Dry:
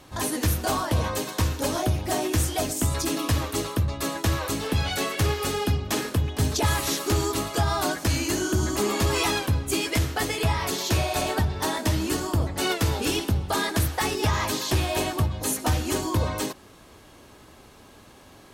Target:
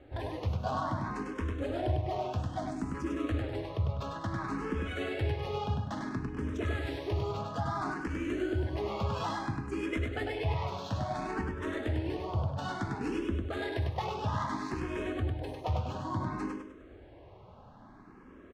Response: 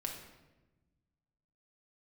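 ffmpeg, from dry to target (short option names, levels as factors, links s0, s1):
-filter_complex "[0:a]alimiter=limit=0.0841:level=0:latency=1:release=406,adynamicsmooth=sensitivity=2:basefreq=1500,aecho=1:1:100|200|300|400|500:0.631|0.246|0.096|0.0374|0.0146,asplit=2[s0][s1];[s1]afreqshift=0.59[s2];[s0][s2]amix=inputs=2:normalize=1"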